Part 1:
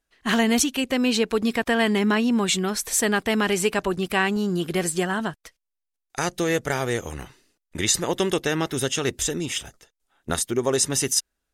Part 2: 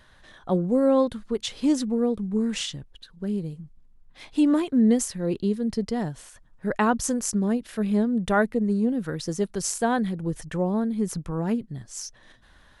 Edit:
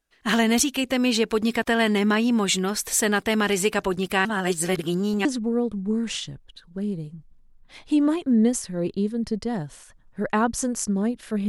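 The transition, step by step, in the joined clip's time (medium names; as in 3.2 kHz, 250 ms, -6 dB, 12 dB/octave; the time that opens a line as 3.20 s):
part 1
4.25–5.25 s: reverse
5.25 s: go over to part 2 from 1.71 s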